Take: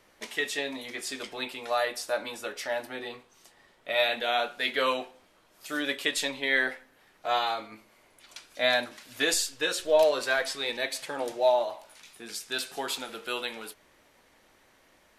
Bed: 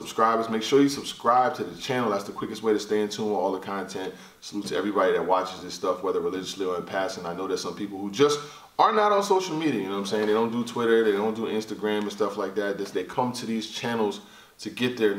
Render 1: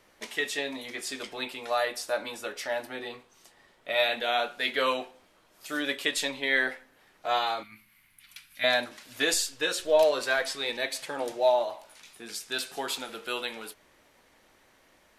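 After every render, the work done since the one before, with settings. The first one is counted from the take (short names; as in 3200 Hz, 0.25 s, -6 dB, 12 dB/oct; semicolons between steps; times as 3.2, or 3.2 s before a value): 7.63–8.64 EQ curve 180 Hz 0 dB, 490 Hz -26 dB, 1100 Hz -9 dB, 2200 Hz +2 dB, 7100 Hz -8 dB, 12000 Hz +8 dB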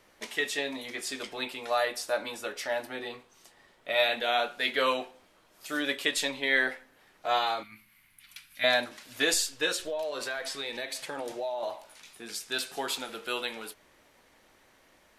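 9.76–11.63 compressor 5:1, threshold -31 dBFS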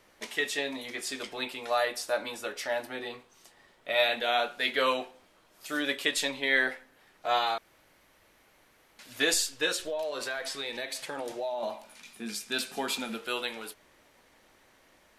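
7.58–8.99 room tone; 11.51–13.16 small resonant body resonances 220/2400 Hz, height 13 dB -> 16 dB, ringing for 95 ms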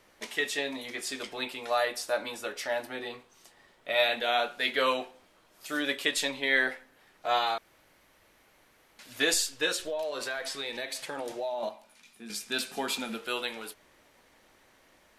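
11.69–12.3 gain -7 dB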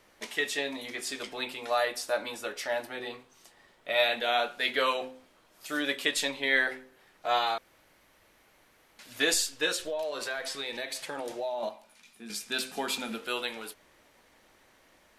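de-hum 129.3 Hz, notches 4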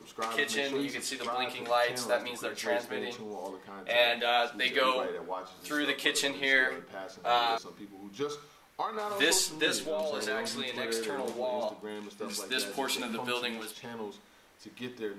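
add bed -14.5 dB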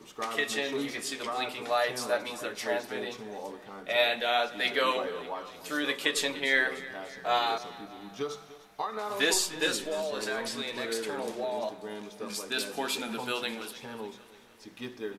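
feedback echo 0.297 s, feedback 55%, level -17.5 dB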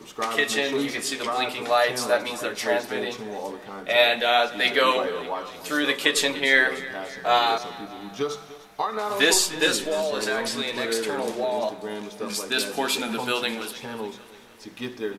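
gain +7 dB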